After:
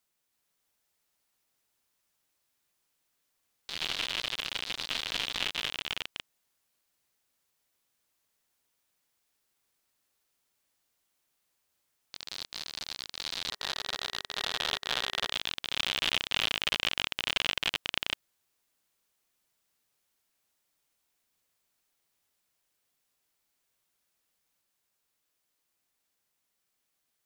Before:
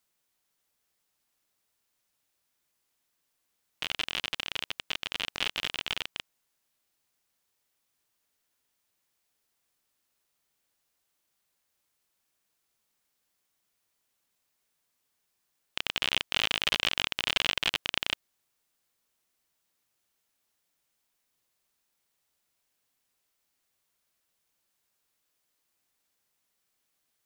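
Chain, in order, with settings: echoes that change speed 0.329 s, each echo +2 st, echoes 3; spectral gain 13.51–15.32, 400–1900 Hz +6 dB; gain -2 dB

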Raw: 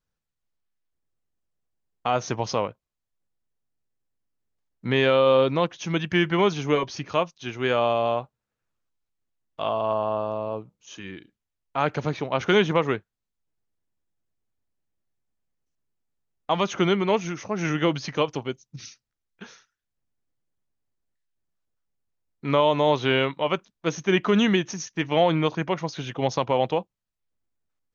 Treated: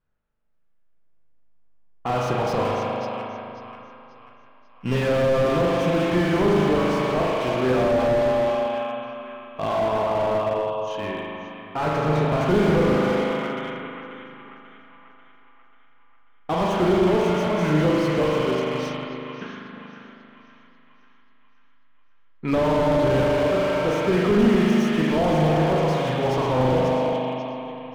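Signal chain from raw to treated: 2.65–4.95 sample sorter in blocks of 16 samples; de-hum 67.21 Hz, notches 35; in parallel at -1.5 dB: compressor, threshold -33 dBFS, peak gain reduction 17 dB; on the sum: split-band echo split 990 Hz, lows 0.316 s, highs 0.539 s, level -10 dB; spring tank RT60 2.8 s, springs 39 ms, chirp 20 ms, DRR -2 dB; low-pass opened by the level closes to 2000 Hz, open at -13.5 dBFS; slew limiter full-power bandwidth 74 Hz

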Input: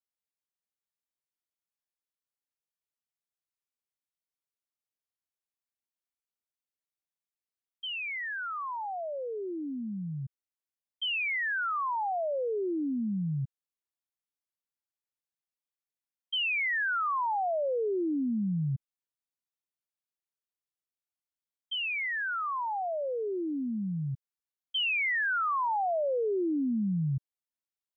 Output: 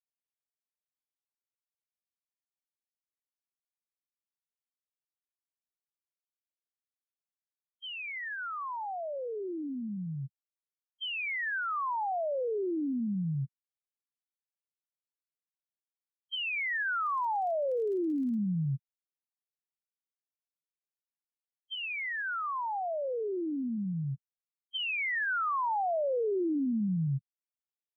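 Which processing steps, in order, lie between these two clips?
loudest bins only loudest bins 2; 17.05–18.35 crackle 41/s -48 dBFS

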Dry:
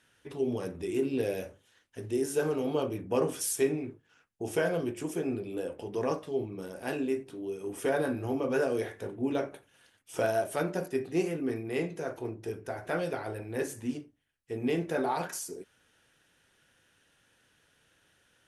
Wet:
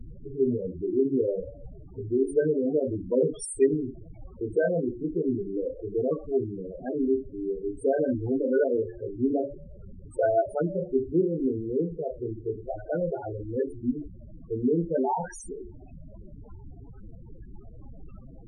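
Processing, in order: added noise pink -45 dBFS; de-hum 71.35 Hz, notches 31; loudest bins only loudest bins 8; gain +6 dB

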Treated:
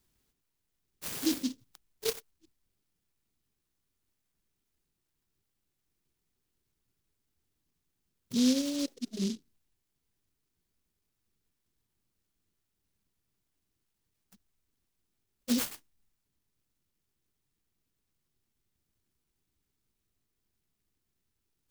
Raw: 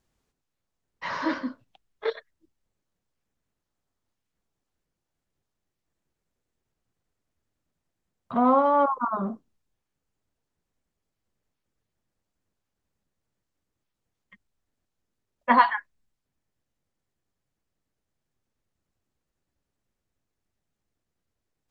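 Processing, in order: Chebyshev band-stop 410–2700 Hz, order 3; resonant high shelf 2800 Hz +7 dB, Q 1.5; noise-modulated delay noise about 4500 Hz, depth 0.17 ms

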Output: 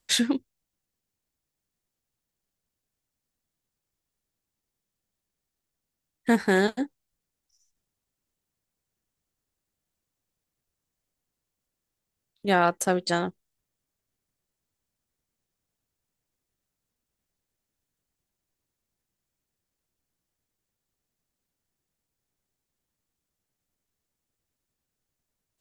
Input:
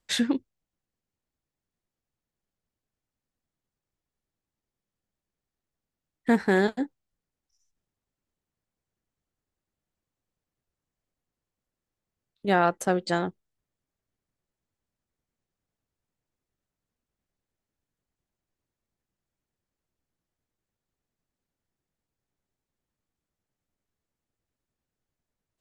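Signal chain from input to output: high shelf 3700 Hz +8.5 dB

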